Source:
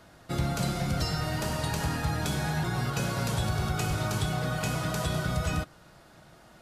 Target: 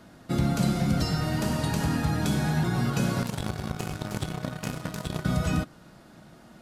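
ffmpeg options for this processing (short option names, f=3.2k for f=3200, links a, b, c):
-filter_complex "[0:a]equalizer=f=230:w=1.3:g=10,asettb=1/sr,asplit=3[a][b][c];[a]atrim=end=3.224[d];[b]atrim=start=3.22:end=5.25,asetpts=PTS-STARTPTS,afade=t=in:d=0.004:c=qsin,afade=t=out:st=2.026:d=0.004:c=qsin,aeval=exprs='0.188*(cos(1*acos(clip(val(0)/0.188,-1,1)))-cos(1*PI/2))+0.0531*(cos(3*acos(clip(val(0)/0.188,-1,1)))-cos(3*PI/2))':c=same[e];[c]atrim=start=5.246[f];[d][e]acrossfade=d=0.004:c1=hsin:c2=qsin[g];[g][f]acrossfade=d=0.004:c1=qsin:c2=hsin"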